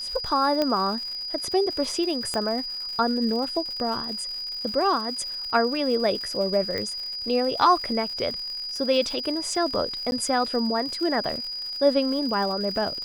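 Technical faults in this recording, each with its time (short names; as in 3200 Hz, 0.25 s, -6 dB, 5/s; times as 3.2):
crackle 160/s -33 dBFS
tone 4900 Hz -30 dBFS
0.62 pop -11 dBFS
2.34 pop -14 dBFS
6.78 pop -17 dBFS
10.11–10.12 gap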